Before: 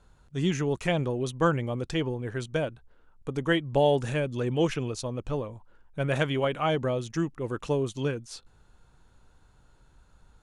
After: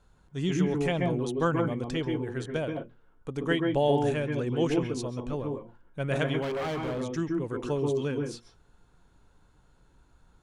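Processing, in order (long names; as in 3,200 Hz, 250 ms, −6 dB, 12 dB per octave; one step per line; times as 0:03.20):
on a send at −4 dB: convolution reverb RT60 0.15 s, pre-delay 131 ms
0:06.42–0:07.01: on the sum: gain into a clipping stage and back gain 26 dB
level −3 dB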